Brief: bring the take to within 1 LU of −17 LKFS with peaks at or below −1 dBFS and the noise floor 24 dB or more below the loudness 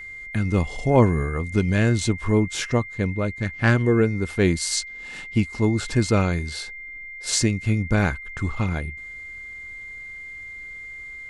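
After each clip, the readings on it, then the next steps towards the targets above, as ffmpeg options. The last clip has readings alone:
interfering tone 2,100 Hz; level of the tone −35 dBFS; integrated loudness −23.0 LKFS; sample peak −4.0 dBFS; target loudness −17.0 LKFS
→ -af "bandreject=frequency=2100:width=30"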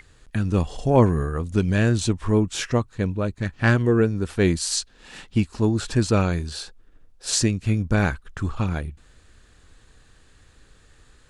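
interfering tone none found; integrated loudness −23.0 LKFS; sample peak −4.0 dBFS; target loudness −17.0 LKFS
→ -af "volume=6dB,alimiter=limit=-1dB:level=0:latency=1"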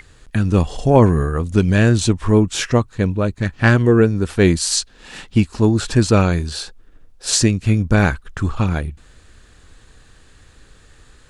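integrated loudness −17.0 LKFS; sample peak −1.0 dBFS; background noise floor −49 dBFS

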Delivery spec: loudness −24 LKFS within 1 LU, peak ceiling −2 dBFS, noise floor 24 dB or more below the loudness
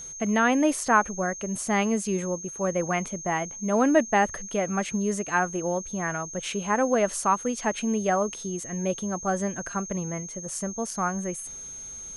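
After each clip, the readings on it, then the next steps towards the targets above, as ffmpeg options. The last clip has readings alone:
interfering tone 6,400 Hz; level of the tone −37 dBFS; integrated loudness −26.5 LKFS; sample peak −7.0 dBFS; target loudness −24.0 LKFS
→ -af "bandreject=frequency=6400:width=30"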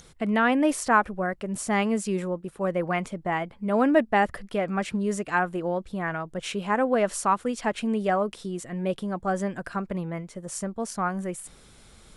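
interfering tone none found; integrated loudness −27.0 LKFS; sample peak −7.0 dBFS; target loudness −24.0 LKFS
→ -af "volume=3dB"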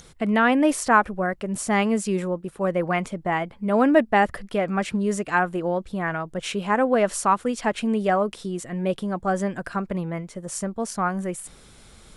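integrated loudness −24.0 LKFS; sample peak −4.0 dBFS; background noise floor −50 dBFS

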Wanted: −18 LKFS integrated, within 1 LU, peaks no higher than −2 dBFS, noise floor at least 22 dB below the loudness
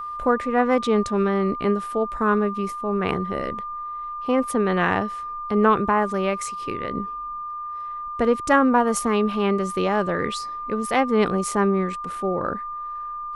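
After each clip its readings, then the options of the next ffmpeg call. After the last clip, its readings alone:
interfering tone 1,200 Hz; level of the tone −29 dBFS; integrated loudness −23.0 LKFS; sample peak −5.0 dBFS; target loudness −18.0 LKFS
→ -af "bandreject=frequency=1200:width=30"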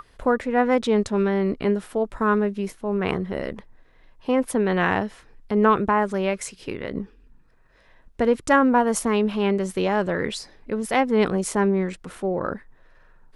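interfering tone none found; integrated loudness −23.0 LKFS; sample peak −5.5 dBFS; target loudness −18.0 LKFS
→ -af "volume=5dB,alimiter=limit=-2dB:level=0:latency=1"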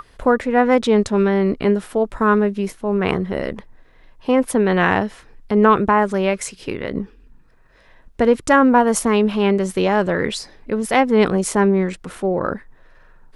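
integrated loudness −18.0 LKFS; sample peak −2.0 dBFS; background noise floor −51 dBFS

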